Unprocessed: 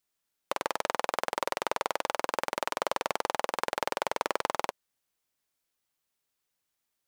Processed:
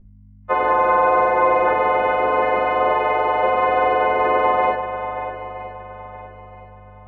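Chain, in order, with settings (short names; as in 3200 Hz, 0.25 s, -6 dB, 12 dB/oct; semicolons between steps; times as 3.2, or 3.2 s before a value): frequency quantiser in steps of 3 st; LPF 1700 Hz 24 dB/oct; 0.67–1.68 comb 5.9 ms, depth 97%; 2.88–3.42 HPF 260 Hz 24 dB/oct; in parallel at 0 dB: limiter -24.5 dBFS, peak gain reduction 9 dB; on the sum: spectral noise reduction 13 dB; hum 50 Hz, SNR 26 dB; swung echo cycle 0.969 s, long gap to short 1.5:1, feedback 31%, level -10.5 dB; reverb RT60 0.40 s, pre-delay 4 ms, DRR -3 dB; gain +3 dB; Vorbis 96 kbps 16000 Hz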